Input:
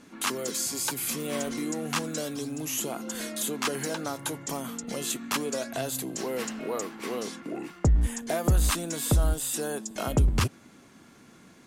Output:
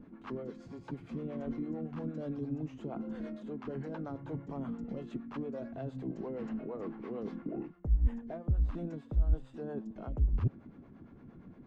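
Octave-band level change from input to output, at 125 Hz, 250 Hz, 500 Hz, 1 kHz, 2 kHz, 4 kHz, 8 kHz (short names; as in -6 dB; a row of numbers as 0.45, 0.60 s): -6.0 dB, -5.0 dB, -9.0 dB, -14.0 dB, -20.0 dB, under -25 dB, under -40 dB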